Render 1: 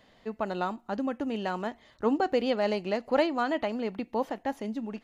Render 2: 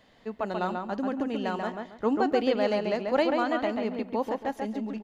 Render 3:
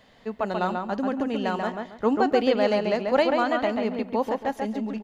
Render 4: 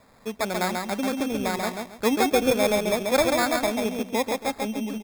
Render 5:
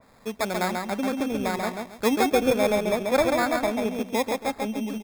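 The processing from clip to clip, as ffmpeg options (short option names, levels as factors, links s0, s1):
-filter_complex "[0:a]asplit=2[s0][s1];[s1]adelay=138,lowpass=f=2700:p=1,volume=0.668,asplit=2[s2][s3];[s3]adelay=138,lowpass=f=2700:p=1,volume=0.27,asplit=2[s4][s5];[s5]adelay=138,lowpass=f=2700:p=1,volume=0.27,asplit=2[s6][s7];[s7]adelay=138,lowpass=f=2700:p=1,volume=0.27[s8];[s0][s2][s4][s6][s8]amix=inputs=5:normalize=0"
-af "equalizer=f=320:t=o:w=0.23:g=-6,volume=1.58"
-af "acrusher=samples=15:mix=1:aa=0.000001"
-af "adynamicequalizer=threshold=0.0112:dfrequency=2800:dqfactor=0.7:tfrequency=2800:tqfactor=0.7:attack=5:release=100:ratio=0.375:range=3.5:mode=cutabove:tftype=highshelf"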